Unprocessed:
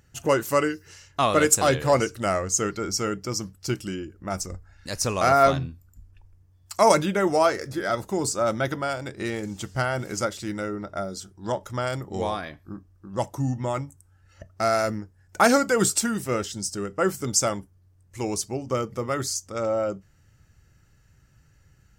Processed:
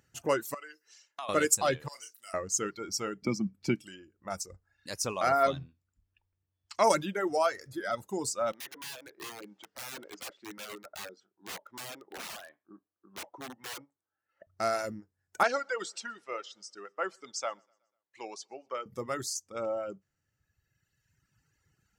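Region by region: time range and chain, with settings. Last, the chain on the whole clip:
0.54–1.29 HPF 490 Hz + compressor 3:1, threshold -32 dBFS
1.88–2.34 differentiator + doubler 33 ms -6 dB
3.22–3.84 LPF 3500 Hz 6 dB/oct + small resonant body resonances 210/2300 Hz, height 15 dB, ringing for 30 ms + three-band squash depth 70%
5.68–6.84 Chebyshev low-pass 3200 Hz + high shelf 2600 Hz +8.5 dB
8.52–14.47 BPF 350–2300 Hz + wrapped overs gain 28.5 dB
15.43–18.86 BPF 590–4900 Hz + air absorption 55 m + feedback echo 0.123 s, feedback 51%, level -22 dB
whole clip: HPF 200 Hz 6 dB/oct; reverb removal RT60 1.9 s; gain -6 dB

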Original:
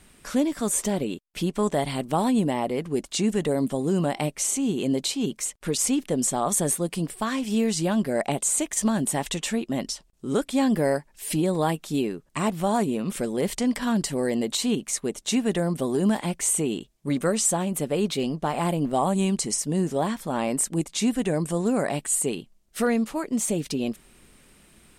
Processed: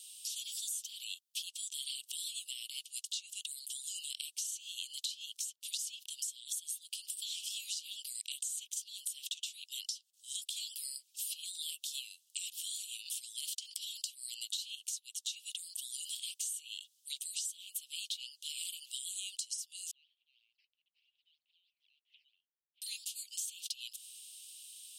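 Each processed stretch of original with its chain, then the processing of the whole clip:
19.91–22.82 decimation with a swept rate 9× 3.1 Hz + Butterworth band-pass 300 Hz, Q 0.56 + air absorption 360 m
whole clip: steep high-pass 2900 Hz 72 dB/oct; dynamic EQ 8400 Hz, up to -8 dB, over -40 dBFS, Q 1; compressor 6:1, threshold -46 dBFS; gain +8 dB

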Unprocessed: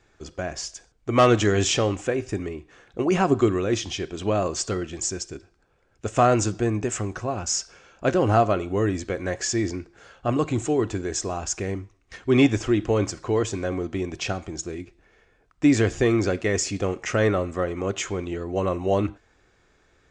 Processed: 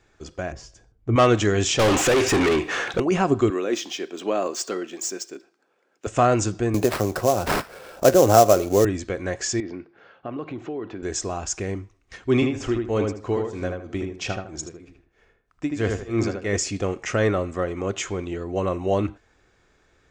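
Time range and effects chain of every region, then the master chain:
0.52–1.16 HPF 48 Hz + tilt -3.5 dB/oct + resonator 110 Hz, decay 0.17 s
1.79–3 overdrive pedal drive 36 dB, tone 1500 Hz, clips at -11.5 dBFS + high shelf 3000 Hz +10.5 dB
3.5–6.07 median filter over 3 samples + HPF 240 Hz 24 dB/oct
6.74–8.85 bell 560 Hz +9.5 dB 1 oct + sample-rate reducer 6700 Hz, jitter 20% + three-band squash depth 40%
9.6–11.03 compressor 4:1, threshold -27 dBFS + BPF 180–5300 Hz + air absorption 240 m
12.34–16.57 tremolo 3.1 Hz, depth 96% + darkening echo 78 ms, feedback 30%, low-pass 2400 Hz, level -3 dB
whole clip: dry

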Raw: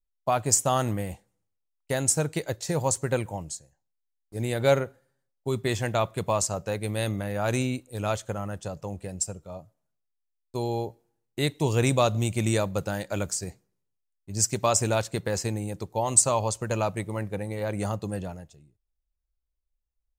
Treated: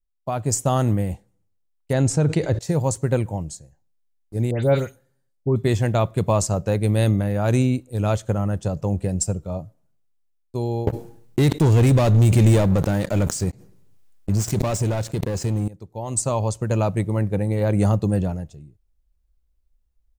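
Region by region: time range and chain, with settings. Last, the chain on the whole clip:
1.93–2.59 air absorption 75 m + fast leveller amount 70%
4.51–5.56 dispersion highs, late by 0.127 s, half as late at 2700 Hz + de-esser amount 90%
10.87–15.68 sample leveller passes 5 + backwards sustainer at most 38 dB/s
whole clip: low shelf 490 Hz +11.5 dB; AGC; gain -7 dB

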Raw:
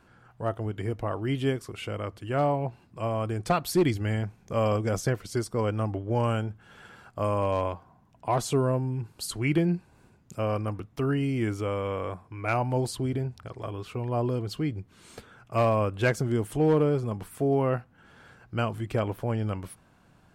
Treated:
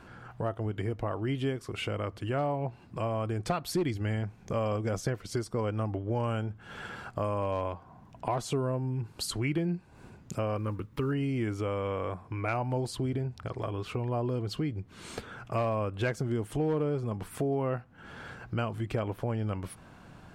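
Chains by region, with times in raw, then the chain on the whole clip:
10.57–11.12 bell 6200 Hz -13 dB 0.79 oct + companded quantiser 8-bit + Butterworth band-stop 700 Hz, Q 3.1
whole clip: high shelf 8100 Hz -8 dB; compressor 2.5:1, threshold -43 dBFS; gain +8.5 dB

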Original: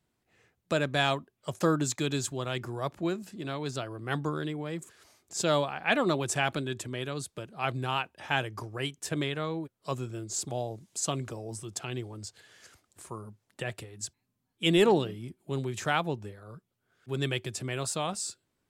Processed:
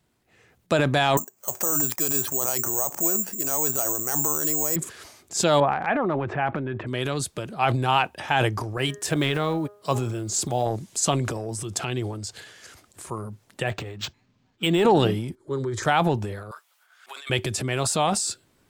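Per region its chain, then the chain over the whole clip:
1.17–4.76 band-pass 790 Hz, Q 0.63 + careless resampling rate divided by 6×, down filtered, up zero stuff
5.6–6.87 LPF 2100 Hz 24 dB/oct + compressor 1.5:1, threshold -39 dBFS
8.77–10.67 block floating point 7-bit + HPF 47 Hz + de-hum 205.9 Hz, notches 9
13.67–14.85 compressor 4:1, threshold -24 dBFS + decimation joined by straight lines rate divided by 4×
15.35–15.83 air absorption 91 m + fixed phaser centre 720 Hz, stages 6
16.51–17.3 HPF 840 Hz 24 dB/oct + negative-ratio compressor -49 dBFS
whole clip: dynamic EQ 810 Hz, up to +6 dB, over -46 dBFS, Q 3; transient shaper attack +1 dB, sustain +8 dB; maximiser +14 dB; gain -7 dB

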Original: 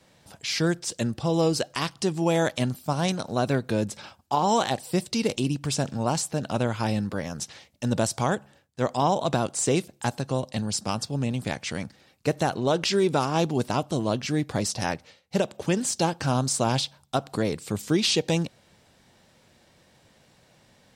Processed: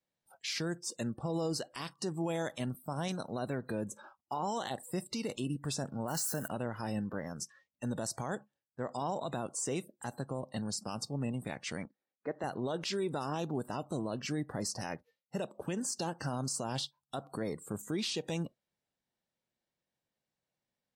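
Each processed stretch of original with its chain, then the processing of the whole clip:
6.08–6.48 switching spikes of -23.5 dBFS + bell 1500 Hz +9.5 dB 0.24 oct
11.85–12.44 BPF 260–4000 Hz + bell 2800 Hz -5 dB 0.25 oct + mismatched tape noise reduction decoder only
whole clip: spectral noise reduction 24 dB; bell 86 Hz -6 dB 0.87 oct; limiter -19.5 dBFS; gain -7 dB

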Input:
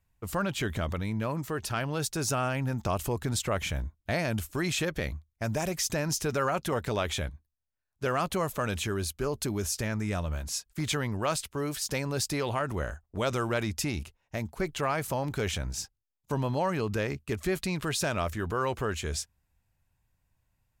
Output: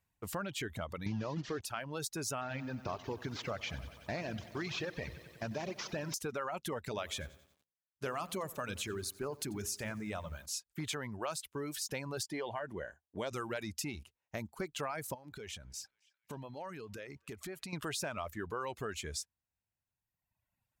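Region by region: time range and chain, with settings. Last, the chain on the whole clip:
1.06–1.61 delta modulation 32 kbps, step -32.5 dBFS + low shelf 420 Hz +11 dB
2.41–6.14 CVSD 32 kbps + lo-fi delay 93 ms, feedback 80%, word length 9-bit, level -9 dB
6.89–10.46 de-hum 58.25 Hz, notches 9 + lo-fi delay 89 ms, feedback 55%, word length 8-bit, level -11 dB
12.23–13.31 high shelf 8200 Hz -10 dB + notch comb 1300 Hz
15.14–17.73 compressor 4:1, threshold -37 dBFS + narrowing echo 0.268 s, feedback 62%, band-pass 2500 Hz, level -16 dB
whole clip: HPF 150 Hz 6 dB/oct; reverb removal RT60 1.5 s; compressor 3:1, threshold -33 dBFS; gain -3 dB

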